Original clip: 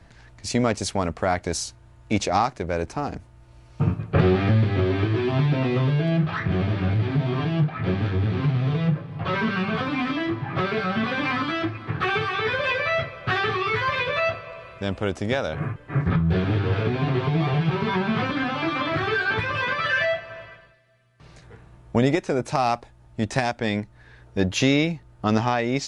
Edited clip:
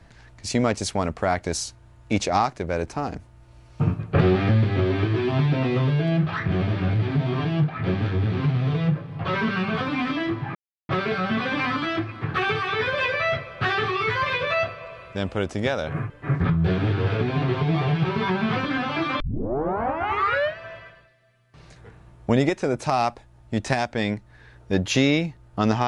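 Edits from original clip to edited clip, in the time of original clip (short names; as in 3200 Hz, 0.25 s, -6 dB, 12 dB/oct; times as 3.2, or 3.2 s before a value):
10.55 insert silence 0.34 s
18.86 tape start 1.38 s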